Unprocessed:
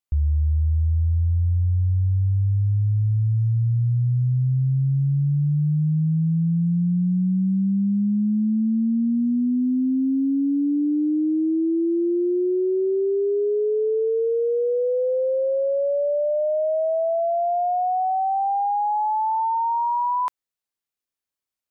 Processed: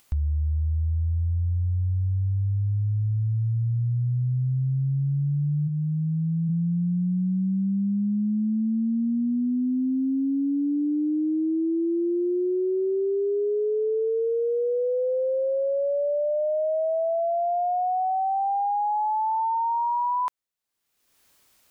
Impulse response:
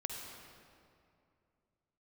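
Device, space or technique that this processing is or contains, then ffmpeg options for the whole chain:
upward and downward compression: -filter_complex "[0:a]asplit=3[a][b][c];[a]afade=t=out:st=5.67:d=0.02[d];[b]equalizer=f=125:t=o:w=1:g=-11,equalizer=f=250:t=o:w=1:g=11,equalizer=f=500:t=o:w=1:g=-4,equalizer=f=1k:t=o:w=1:g=10,afade=t=in:st=5.67:d=0.02,afade=t=out:st=6.48:d=0.02[e];[c]afade=t=in:st=6.48:d=0.02[f];[d][e][f]amix=inputs=3:normalize=0,acompressor=mode=upward:threshold=-40dB:ratio=2.5,acompressor=threshold=-23dB:ratio=4"

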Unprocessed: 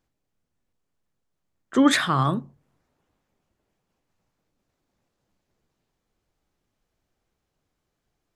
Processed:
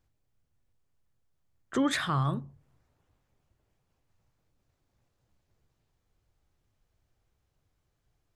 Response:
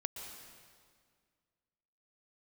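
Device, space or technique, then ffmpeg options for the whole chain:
car stereo with a boomy subwoofer: -af "lowshelf=f=150:t=q:w=1.5:g=7,alimiter=limit=-16dB:level=0:latency=1:release=402,volume=-2dB"

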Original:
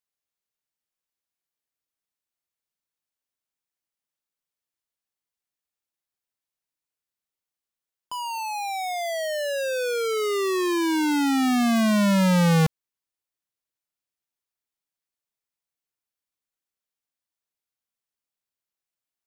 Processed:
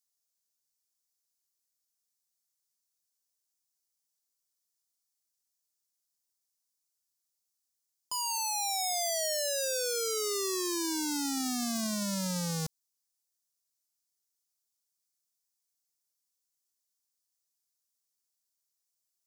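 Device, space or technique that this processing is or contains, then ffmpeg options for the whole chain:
over-bright horn tweeter: -af "highshelf=f=3.8k:t=q:w=1.5:g=12.5,alimiter=limit=-14.5dB:level=0:latency=1:release=22,volume=-6dB"

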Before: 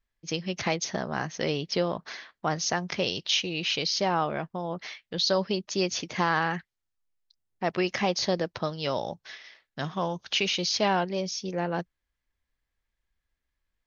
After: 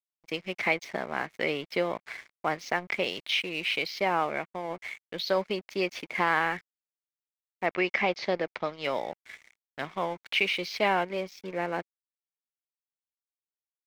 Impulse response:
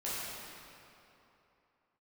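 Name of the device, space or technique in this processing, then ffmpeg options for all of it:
pocket radio on a weak battery: -filter_complex "[0:a]highpass=260,lowpass=3k,aeval=exprs='sgn(val(0))*max(abs(val(0))-0.00447,0)':c=same,equalizer=f=2.2k:t=o:w=0.32:g=11.5,asettb=1/sr,asplit=3[a][b][c];[a]atrim=end=7.664[d];[b]atrim=start=7.66:end=8.84,asetpts=PTS-STARTPTS,afade=t=in:d=0.004:c=qsin,afade=t=out:st=1.176:d=0.004:c=qsin,lowpass=f=6.2k:w=0.5412,lowpass=f=6.2k:w=1.3066[e];[c]atrim=start=8.836[f];[d][e]acrossfade=d=0.004:c1=hsin:c2=qsin[g];[g][f]acrossfade=d=0.004:c1=qsin:c2=hsin"

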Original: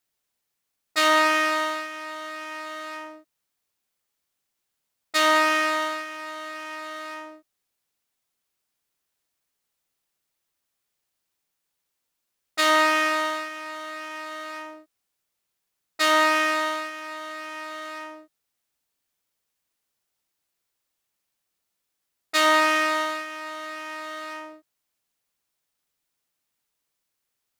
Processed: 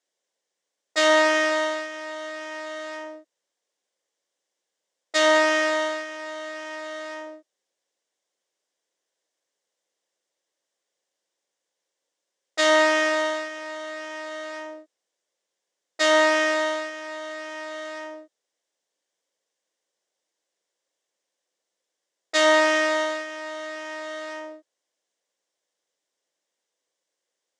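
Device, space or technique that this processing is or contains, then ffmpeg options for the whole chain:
television speaker: -af "highpass=f=230:w=0.5412,highpass=f=230:w=1.3066,equalizer=f=240:t=q:w=4:g=-9,equalizer=f=530:t=q:w=4:g=8,equalizer=f=860:t=q:w=4:g=-3,equalizer=f=1.3k:t=q:w=4:g=-9,equalizer=f=2.5k:t=q:w=4:g=-8,equalizer=f=4.3k:t=q:w=4:g=-6,lowpass=f=7.5k:w=0.5412,lowpass=f=7.5k:w=1.3066,volume=3.5dB"

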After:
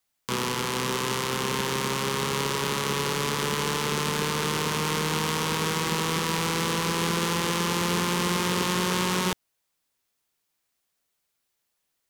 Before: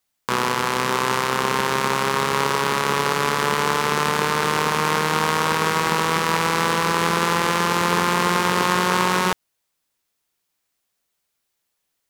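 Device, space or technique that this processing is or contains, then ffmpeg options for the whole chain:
one-band saturation: -filter_complex "[0:a]acrossover=split=390|2300[a][b][c];[b]asoftclip=type=tanh:threshold=-27.5dB[d];[a][d][c]amix=inputs=3:normalize=0,volume=-2dB"

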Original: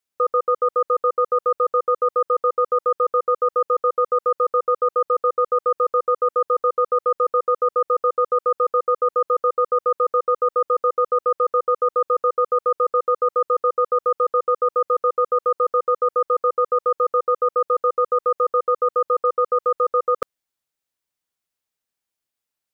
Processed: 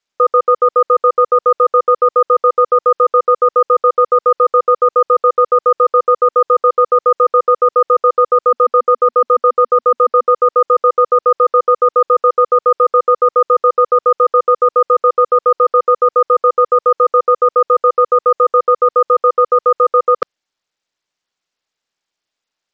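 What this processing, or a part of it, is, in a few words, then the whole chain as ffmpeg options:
Bluetooth headset: -filter_complex "[0:a]asettb=1/sr,asplit=3[a][b][c];[a]atrim=end=8.504[d];[b]atrim=start=8.5:end=10.31,asetpts=PTS-STARTPTS,afade=t=in:d=0.004:c=qsin,afade=t=out:st=1.806:d=0.004:c=qsin,equalizer=f=240:w=5:g=5[e];[c]atrim=start=10.306[f];[d][e]acrossfade=d=0.004:c1=hsin:c2=qsin[g];[g][f]acrossfade=d=0.004:c1=qsin:c2=hsin,highpass=f=240:p=1,aresample=16000,aresample=44100,volume=8.5dB" -ar 44100 -c:a sbc -b:a 64k

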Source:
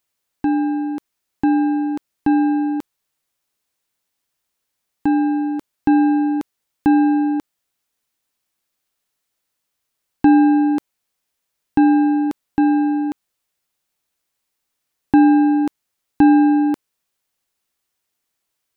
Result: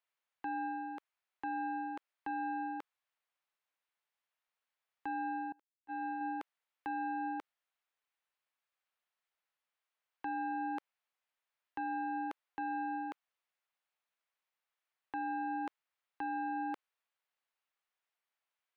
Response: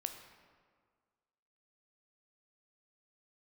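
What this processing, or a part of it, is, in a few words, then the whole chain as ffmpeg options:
DJ mixer with the lows and highs turned down: -filter_complex "[0:a]acrossover=split=540 3300:gain=0.0708 1 0.158[a][b][c];[a][b][c]amix=inputs=3:normalize=0,alimiter=limit=-23.5dB:level=0:latency=1:release=29,asettb=1/sr,asplit=3[d][e][f];[d]atrim=end=5.524[g];[e]atrim=start=5.52:end=6.21,asetpts=PTS-STARTPTS,afade=t=in:d=0.004:c=qsin,afade=t=out:st=0.686:d=0.004:c=qsin,agate=range=-28dB:threshold=-30dB:ratio=16:detection=peak[h];[f]atrim=start=6.206[i];[g][h]acrossfade=d=0.004:c1=hsin:c2=qsin[j];[j][i]acrossfade=d=0.004:c1=qsin:c2=hsin,volume=-7dB"

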